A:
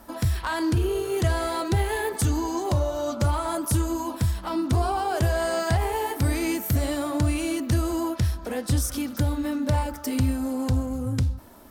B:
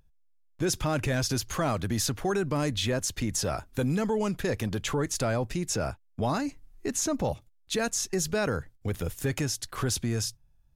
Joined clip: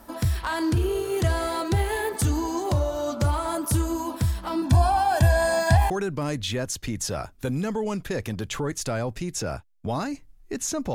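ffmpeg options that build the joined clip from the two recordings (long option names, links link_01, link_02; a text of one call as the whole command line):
ffmpeg -i cue0.wav -i cue1.wav -filter_complex "[0:a]asettb=1/sr,asplit=3[link_01][link_02][link_03];[link_01]atrim=end=4.624[link_04];[link_02]atrim=start=4.62:end=5.9,asetpts=PTS-STARTPTS,afade=type=in:duration=0.004:curve=qsin,afade=type=out:start_time=1.276:duration=0.004:curve=qsin,aecho=1:1:1.2:0.93,atrim=end_sample=56448[link_05];[link_03]atrim=start=5.896[link_06];[link_04][link_05]acrossfade=duration=0.004:curve1=hsin:curve2=qsin[link_07];[link_07][link_06]acrossfade=duration=0.004:curve1=qsin:curve2=hsin,apad=whole_dur=10.94,atrim=end=10.94,atrim=end=5.902[link_08];[1:a]atrim=start=2.238:end=7.28[link_09];[link_08][link_09]acrossfade=duration=0.004:curve1=hsin:curve2=hsin" out.wav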